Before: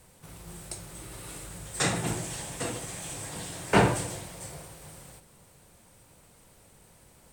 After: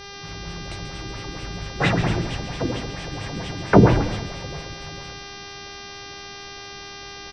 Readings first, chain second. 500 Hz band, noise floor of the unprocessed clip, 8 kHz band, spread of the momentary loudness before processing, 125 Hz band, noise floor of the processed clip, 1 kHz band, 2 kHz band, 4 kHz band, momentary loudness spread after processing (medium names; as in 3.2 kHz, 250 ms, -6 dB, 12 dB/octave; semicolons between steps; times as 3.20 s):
+8.5 dB, -58 dBFS, -5.5 dB, 22 LU, +11.0 dB, -38 dBFS, +5.5 dB, +6.0 dB, +7.0 dB, 18 LU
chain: bass shelf 220 Hz +8 dB; LFO low-pass sine 4.4 Hz 270–3400 Hz; mains buzz 400 Hz, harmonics 15, -42 dBFS -1 dB/octave; on a send: frequency-shifting echo 137 ms, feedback 35%, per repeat -80 Hz, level -9.5 dB; on the sum: tape noise reduction on one side only decoder only; trim +4 dB